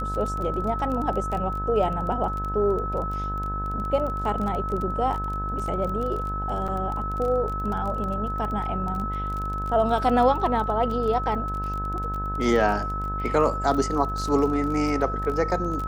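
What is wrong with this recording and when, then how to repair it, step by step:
buzz 50 Hz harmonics 35 -31 dBFS
crackle 24/s -29 dBFS
tone 1300 Hz -29 dBFS
6.68–6.69 gap 6.5 ms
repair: de-click; de-hum 50 Hz, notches 35; notch 1300 Hz, Q 30; interpolate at 6.68, 6.5 ms

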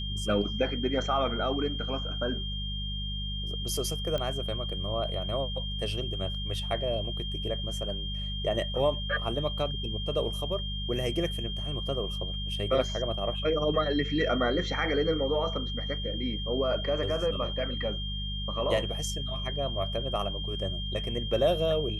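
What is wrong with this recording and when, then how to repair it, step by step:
hum 50 Hz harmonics 4 -35 dBFS
tone 3200 Hz -36 dBFS
4.18 pop -20 dBFS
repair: de-click; notch 3200 Hz, Q 30; de-hum 50 Hz, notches 4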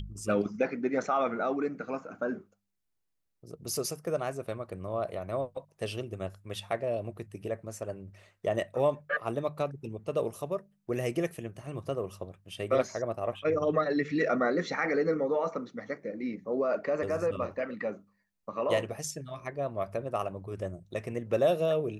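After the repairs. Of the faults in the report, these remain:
none

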